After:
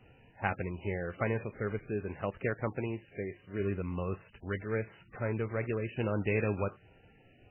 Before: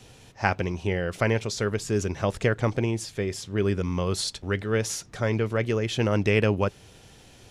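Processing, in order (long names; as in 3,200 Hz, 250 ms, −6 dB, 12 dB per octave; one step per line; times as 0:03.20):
0:01.90–0:03.60: low-shelf EQ 84 Hz −9.5 dB
level −8 dB
MP3 8 kbit/s 8,000 Hz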